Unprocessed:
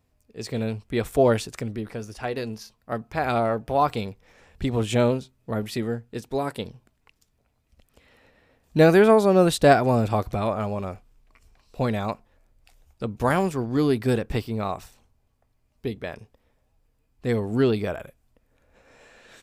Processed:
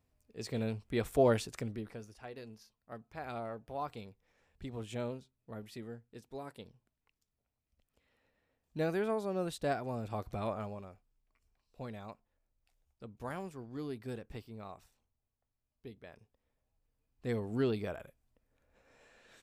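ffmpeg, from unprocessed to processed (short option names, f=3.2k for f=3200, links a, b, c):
-af "volume=7.5dB,afade=t=out:st=1.63:d=0.55:silence=0.316228,afade=t=in:st=10.01:d=0.48:silence=0.446684,afade=t=out:st=10.49:d=0.4:silence=0.375837,afade=t=in:st=16.05:d=1.24:silence=0.375837"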